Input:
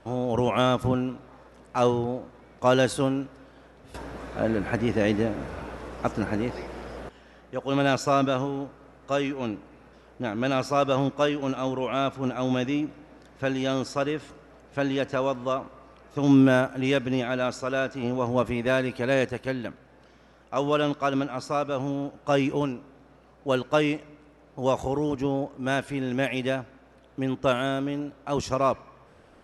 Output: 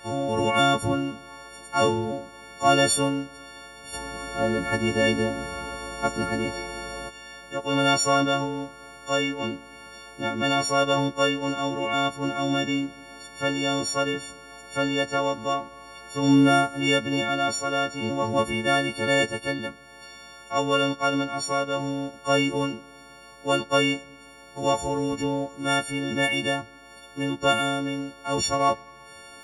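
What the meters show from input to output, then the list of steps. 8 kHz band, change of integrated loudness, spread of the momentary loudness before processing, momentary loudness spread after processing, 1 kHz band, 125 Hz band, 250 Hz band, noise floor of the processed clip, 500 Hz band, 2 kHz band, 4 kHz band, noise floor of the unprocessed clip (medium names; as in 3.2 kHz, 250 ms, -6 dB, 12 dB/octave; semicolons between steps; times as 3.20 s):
+11.0 dB, +2.0 dB, 13 LU, 18 LU, +4.0 dB, -1.0 dB, 0.0 dB, -48 dBFS, 0.0 dB, +4.5 dB, +8.5 dB, -55 dBFS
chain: partials quantised in pitch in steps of 4 st; tape noise reduction on one side only encoder only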